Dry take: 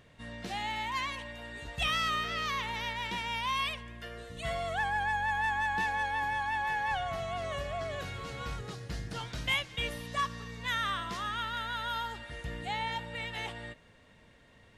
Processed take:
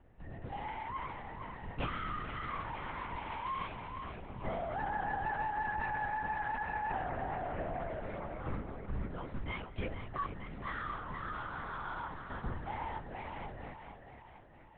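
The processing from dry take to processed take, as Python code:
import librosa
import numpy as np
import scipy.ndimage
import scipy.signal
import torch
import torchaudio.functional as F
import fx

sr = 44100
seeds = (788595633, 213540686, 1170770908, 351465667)

y = scipy.signal.sosfilt(scipy.signal.butter(2, 1300.0, 'lowpass', fs=sr, output='sos'), x)
y = fx.low_shelf(y, sr, hz=85.0, db=9.0)
y = fx.echo_thinned(y, sr, ms=462, feedback_pct=52, hz=200.0, wet_db=-6.5)
y = fx.lpc_vocoder(y, sr, seeds[0], excitation='whisper', order=8)
y = y * librosa.db_to_amplitude(-4.0)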